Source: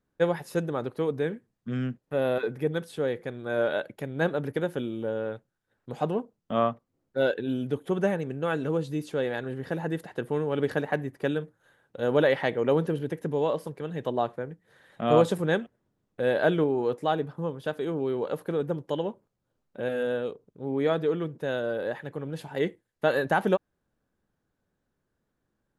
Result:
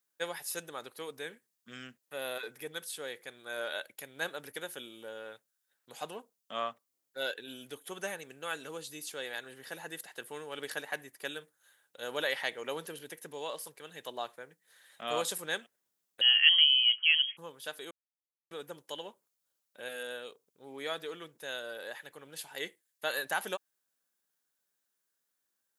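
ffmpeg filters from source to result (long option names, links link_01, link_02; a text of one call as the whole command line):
ffmpeg -i in.wav -filter_complex "[0:a]asettb=1/sr,asplit=3[link_01][link_02][link_03];[link_01]atrim=end=16.214[link_04];[link_02]atrim=start=16.21:end=17.37,asetpts=PTS-STARTPTS,afade=type=in:duration=0.004:curve=qsin,afade=type=out:start_time=1.156:duration=0.004:curve=qsin,lowpass=frequency=2900:width_type=q:width=0.5098,lowpass=frequency=2900:width_type=q:width=0.6013,lowpass=frequency=2900:width_type=q:width=0.9,lowpass=frequency=2900:width_type=q:width=2.563,afreqshift=-3400[link_05];[link_03]atrim=start=17.366[link_06];[link_04][link_05]acrossfade=duration=0.004:curve1=hsin:curve2=qsin[link_07];[link_07][link_06]acrossfade=duration=0.004:curve1=qsin:curve2=hsin,asplit=3[link_08][link_09][link_10];[link_08]atrim=end=17.91,asetpts=PTS-STARTPTS,afade=type=out:start_time=17.906:duration=0.004:curve=hsin[link_11];[link_09]atrim=start=17.91:end=18.51,asetpts=PTS-STARTPTS,volume=0[link_12];[link_10]atrim=start=18.51,asetpts=PTS-STARTPTS,afade=type=in:duration=0.004:curve=hsin[link_13];[link_11][link_12][link_13]concat=n=3:v=0:a=1,aderivative,volume=8.5dB" out.wav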